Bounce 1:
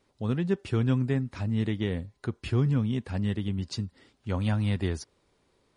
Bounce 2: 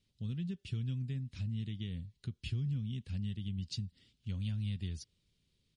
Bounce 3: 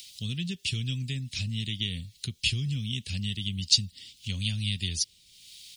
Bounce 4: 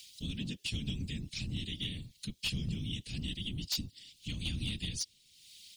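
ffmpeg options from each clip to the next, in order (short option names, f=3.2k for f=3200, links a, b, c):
-af "highshelf=f=4.9k:g=-11.5,acompressor=threshold=-31dB:ratio=2.5,firequalizer=gain_entry='entry(170,0);entry(300,-13);entry(820,-24);entry(3000,4)':delay=0.05:min_phase=1,volume=-3dB"
-filter_complex "[0:a]acrossover=split=400|1600[a][b][c];[c]acompressor=mode=upward:threshold=-58dB:ratio=2.5[d];[a][b][d]amix=inputs=3:normalize=0,aexciter=amount=7.7:drive=3:freq=2.1k,volume=4.5dB"
-filter_complex "[0:a]acrossover=split=390[a][b];[b]asoftclip=type=tanh:threshold=-18dB[c];[a][c]amix=inputs=2:normalize=0,afftfilt=real='hypot(re,im)*cos(2*PI*random(0))':imag='hypot(re,im)*sin(2*PI*random(1))':win_size=512:overlap=0.75,volume=28dB,asoftclip=hard,volume=-28dB"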